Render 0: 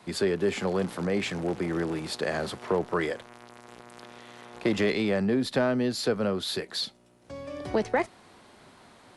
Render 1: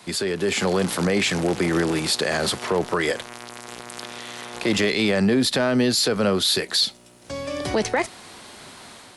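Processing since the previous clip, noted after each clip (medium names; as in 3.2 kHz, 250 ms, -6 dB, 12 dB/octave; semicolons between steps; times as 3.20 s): treble shelf 2.4 kHz +11 dB; peak limiter -20 dBFS, peak gain reduction 8.5 dB; level rider gain up to 5 dB; trim +3 dB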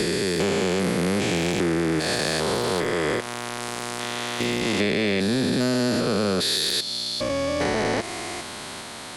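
spectrogram pixelated in time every 400 ms; compression, threshold -28 dBFS, peak gain reduction 8.5 dB; sine folder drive 5 dB, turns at -14.5 dBFS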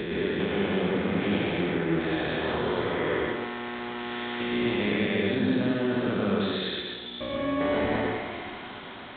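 reverberation RT60 1.0 s, pre-delay 92 ms, DRR -2.5 dB; resampled via 8 kHz; trim -8 dB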